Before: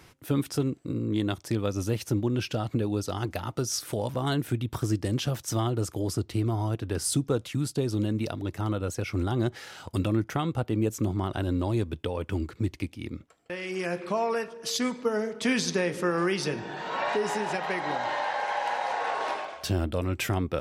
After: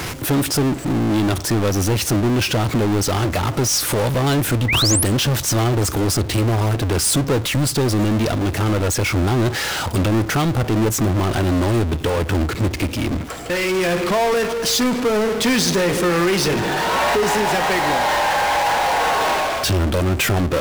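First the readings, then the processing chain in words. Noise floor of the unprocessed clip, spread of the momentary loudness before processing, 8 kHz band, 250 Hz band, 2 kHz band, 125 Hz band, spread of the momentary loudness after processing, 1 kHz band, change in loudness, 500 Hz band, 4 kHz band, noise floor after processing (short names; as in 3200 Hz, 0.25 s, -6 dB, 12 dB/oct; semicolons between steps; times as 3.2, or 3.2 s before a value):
-54 dBFS, 5 LU, +14.5 dB, +9.5 dB, +12.5 dB, +10.0 dB, 3 LU, +11.5 dB, +11.0 dB, +10.0 dB, +14.5 dB, -27 dBFS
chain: power-law curve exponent 0.35; painted sound rise, 4.68–5.04, 1900–12000 Hz -20 dBFS; hum 60 Hz, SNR 27 dB; gain +1.5 dB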